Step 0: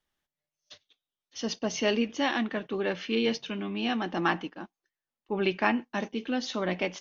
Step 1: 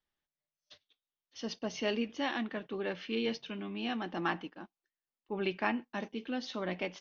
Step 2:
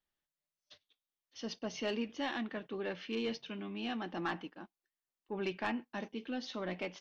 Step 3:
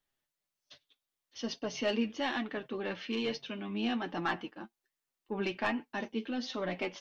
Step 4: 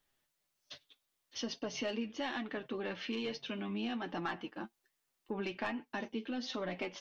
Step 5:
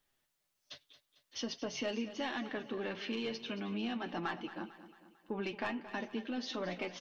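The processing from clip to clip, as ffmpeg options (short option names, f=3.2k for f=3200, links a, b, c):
-af "lowpass=f=5.7k:w=0.5412,lowpass=f=5.7k:w=1.3066,volume=-6.5dB"
-af "asoftclip=type=tanh:threshold=-24dB,volume=-2dB"
-af "flanger=delay=6.7:depth=2.8:regen=37:speed=1.2:shape=triangular,volume=8dB"
-af "acompressor=threshold=-44dB:ratio=3,volume=5.5dB"
-af "aecho=1:1:224|448|672|896|1120:0.2|0.0998|0.0499|0.0249|0.0125"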